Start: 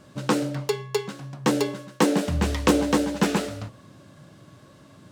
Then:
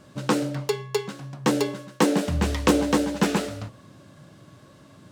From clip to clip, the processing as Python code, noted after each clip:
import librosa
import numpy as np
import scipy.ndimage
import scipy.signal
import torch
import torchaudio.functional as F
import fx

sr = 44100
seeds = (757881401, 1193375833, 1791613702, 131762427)

y = x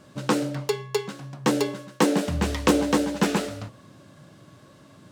y = fx.low_shelf(x, sr, hz=68.0, db=-6.0)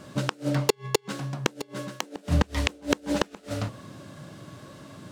y = fx.gate_flip(x, sr, shuts_db=-13.0, range_db=-34)
y = y * 10.0 ** (6.0 / 20.0)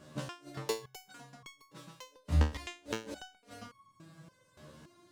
y = fx.resonator_held(x, sr, hz=3.5, low_hz=76.0, high_hz=1100.0)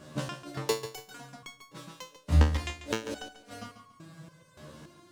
y = fx.echo_feedback(x, sr, ms=142, feedback_pct=29, wet_db=-12.0)
y = y * 10.0 ** (5.5 / 20.0)